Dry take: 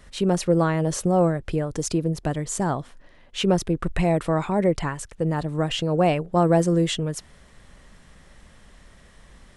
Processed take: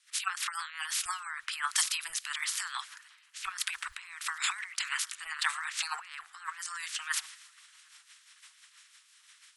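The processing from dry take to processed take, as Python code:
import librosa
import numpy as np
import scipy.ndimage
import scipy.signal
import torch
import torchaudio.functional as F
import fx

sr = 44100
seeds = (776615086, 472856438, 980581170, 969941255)

y = fx.spec_clip(x, sr, under_db=30)
y = scipy.signal.sosfilt(scipy.signal.cheby2(4, 40, 620.0, 'highpass', fs=sr, output='sos'), y)
y = fx.spec_gate(y, sr, threshold_db=-25, keep='strong')
y = fx.over_compress(y, sr, threshold_db=-34.0, ratio=-1.0)
y = fx.dmg_crackle(y, sr, seeds[0], per_s=44.0, level_db=-58.0)
y = fx.rotary(y, sr, hz=6.0)
y = fx.echo_swing(y, sr, ms=1266, ratio=1.5, feedback_pct=59, wet_db=-20.5)
y = fx.band_widen(y, sr, depth_pct=100)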